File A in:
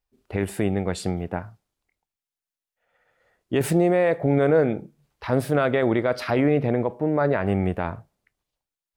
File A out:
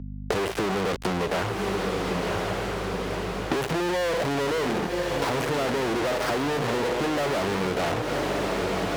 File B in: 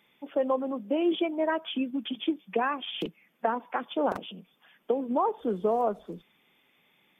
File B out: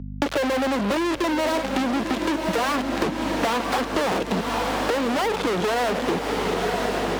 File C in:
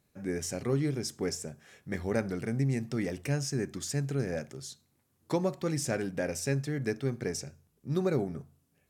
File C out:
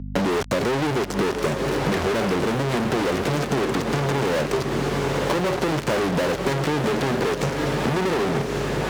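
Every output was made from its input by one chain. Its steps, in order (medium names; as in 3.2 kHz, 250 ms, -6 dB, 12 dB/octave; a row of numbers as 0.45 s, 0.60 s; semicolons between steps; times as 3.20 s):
dead-time distortion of 0.2 ms; waveshaping leveller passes 3; peaking EQ 430 Hz +5 dB 0.97 oct; Chebyshev shaper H 2 -14 dB, 6 -23 dB, 8 -28 dB, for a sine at -5.5 dBFS; fuzz box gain 40 dB, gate -44 dBFS; high-pass 230 Hz 6 dB/octave; echo that smears into a reverb 1032 ms, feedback 48%, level -8.5 dB; hum 50 Hz, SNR 20 dB; compression, threshold -23 dBFS; treble shelf 8.8 kHz -11 dB; three bands compressed up and down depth 40%; peak normalisation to -9 dBFS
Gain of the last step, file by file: -0.5 dB, +2.5 dB, +3.5 dB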